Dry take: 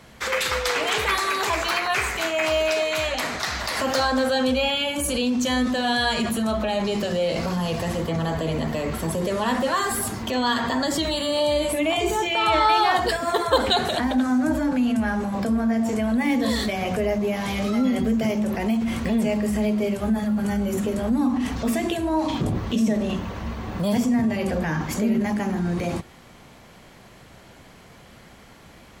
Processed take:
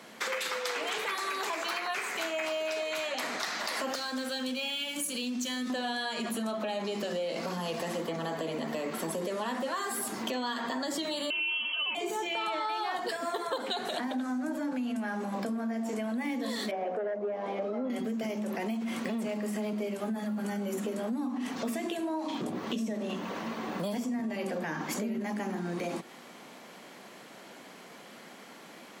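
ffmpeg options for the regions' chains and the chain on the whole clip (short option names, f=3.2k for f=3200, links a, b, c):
-filter_complex "[0:a]asettb=1/sr,asplit=3[a][b][c];[a]atrim=end=3.954[d];[b]atrim=start=3.95:end=5.7,asetpts=PTS-STARTPTS,afade=t=in:d=0.004:c=qsin,afade=t=out:st=1.746:d=0.004:c=qsin,aeval=exprs='sgn(val(0))*max(abs(val(0))-0.00841,0)':c=same,equalizer=f=670:w=0.54:g=-11.5[e];[c]atrim=start=5.696[f];[d][e]acrossfade=d=0.004:c1=hsin:c2=qsin[g];[g][f]acrossfade=d=0.004:c1=qsin:c2=hsin,asettb=1/sr,asplit=3[h][i][j];[h]atrim=end=11.304[k];[i]atrim=start=11.3:end=11.95,asetpts=PTS-STARTPTS,afade=t=in:d=0.004:c=qsin,afade=t=out:st=0.646:d=0.004:c=qsin,lowshelf=f=500:g=6,lowpass=f=2.8k:t=q:w=0.5098,lowpass=f=2.8k:t=q:w=0.6013,lowpass=f=2.8k:t=q:w=0.9,lowpass=f=2.8k:t=q:w=2.563,afreqshift=-3300[l];[j]atrim=start=11.946[m];[k][l]acrossfade=d=0.004:c1=hsin:c2=qsin[n];[n][m]acrossfade=d=0.004:c1=qsin:c2=hsin,asettb=1/sr,asplit=3[o][p][q];[o]atrim=end=16.714[r];[p]atrim=start=16.71:end=17.9,asetpts=PTS-STARTPTS,afade=t=in:d=0.004:c=qsin,afade=t=out:st=1.186:d=0.004:c=qsin,bandpass=f=540:t=q:w=1.9,aeval=exprs='0.15*sin(PI/2*1.58*val(0)/0.15)':c=same[s];[q]atrim=start=17.896[t];[r][s]acrossfade=d=0.004:c1=hsin:c2=qsin[u];[u][t]acrossfade=d=0.004:c1=qsin:c2=hsin,asettb=1/sr,asplit=3[v][w][x];[v]atrim=end=19.074[y];[w]atrim=start=19.07:end=19.73,asetpts=PTS-STARTPTS,afade=t=in:d=0.004:c=qsin,afade=t=out:st=0.656:d=0.004:c=qsin,highpass=f=98:w=0.5412,highpass=f=98:w=1.3066,volume=18dB,asoftclip=hard,volume=-18dB[z];[x]atrim=start=19.726[aa];[y][z]acrossfade=d=0.004:c1=hsin:c2=qsin[ab];[ab][aa]acrossfade=d=0.004:c1=qsin:c2=hsin,highpass=f=210:w=0.5412,highpass=f=210:w=1.3066,acompressor=threshold=-31dB:ratio=6"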